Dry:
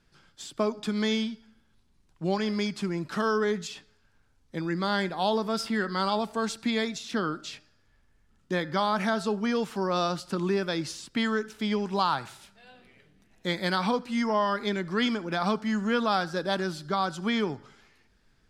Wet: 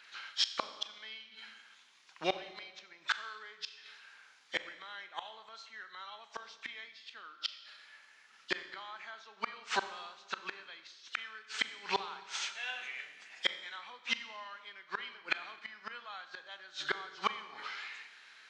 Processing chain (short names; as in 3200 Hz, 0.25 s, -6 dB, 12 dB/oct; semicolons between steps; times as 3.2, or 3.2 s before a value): nonlinear frequency compression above 2800 Hz 1.5:1; HPF 1200 Hz 12 dB/oct; bell 2300 Hz +4.5 dB 1 oct; flipped gate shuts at -31 dBFS, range -31 dB; Schroeder reverb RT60 1.2 s, combs from 29 ms, DRR 11 dB; gain +14.5 dB